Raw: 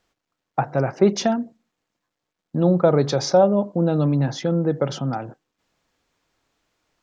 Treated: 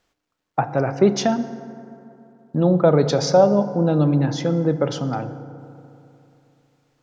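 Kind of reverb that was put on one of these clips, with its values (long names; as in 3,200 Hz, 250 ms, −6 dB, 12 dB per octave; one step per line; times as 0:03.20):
feedback delay network reverb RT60 2.9 s, high-frequency decay 0.4×, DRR 11 dB
level +1 dB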